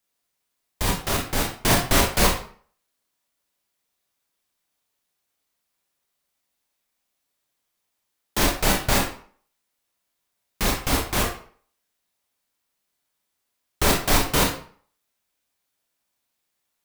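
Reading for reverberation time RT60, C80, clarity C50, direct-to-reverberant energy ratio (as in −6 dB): 0.50 s, 10.0 dB, 6.0 dB, −1.0 dB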